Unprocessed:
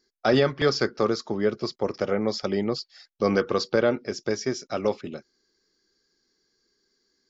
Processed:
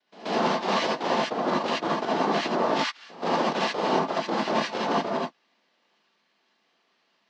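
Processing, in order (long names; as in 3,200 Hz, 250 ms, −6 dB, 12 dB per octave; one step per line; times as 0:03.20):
mu-law and A-law mismatch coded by A
cochlear-implant simulation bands 2
high-pass filter 210 Hz 24 dB per octave
reversed playback
downward compressor 10 to 1, threshold −33 dBFS, peak gain reduction 17 dB
reversed playback
low-pass filter 4,300 Hz 24 dB per octave
on a send: backwards echo 131 ms −19 dB
on the sum: reverb whose tail is shaped and stops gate 100 ms rising, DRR −5.5 dB
level +7 dB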